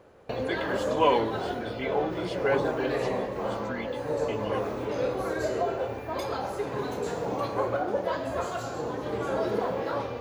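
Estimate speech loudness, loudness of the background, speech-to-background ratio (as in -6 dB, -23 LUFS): -31.5 LUFS, -31.0 LUFS, -0.5 dB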